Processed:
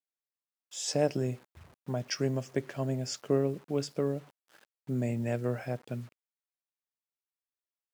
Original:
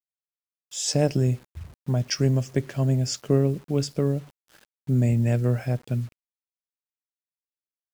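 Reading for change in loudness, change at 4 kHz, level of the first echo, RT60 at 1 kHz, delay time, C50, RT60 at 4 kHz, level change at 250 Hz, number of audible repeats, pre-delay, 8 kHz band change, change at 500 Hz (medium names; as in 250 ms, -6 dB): -8.0 dB, -7.0 dB, no echo, no reverb, no echo, no reverb, no reverb, -7.5 dB, no echo, no reverb, -7.5 dB, -4.0 dB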